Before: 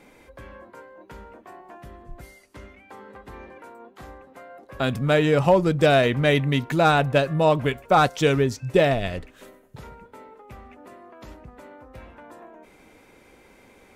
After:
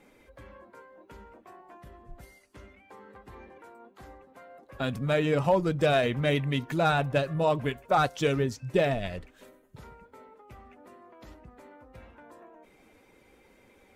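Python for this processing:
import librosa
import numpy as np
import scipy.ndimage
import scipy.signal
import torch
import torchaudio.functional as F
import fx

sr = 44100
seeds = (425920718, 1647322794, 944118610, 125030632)

y = fx.spec_quant(x, sr, step_db=15)
y = F.gain(torch.from_numpy(y), -6.0).numpy()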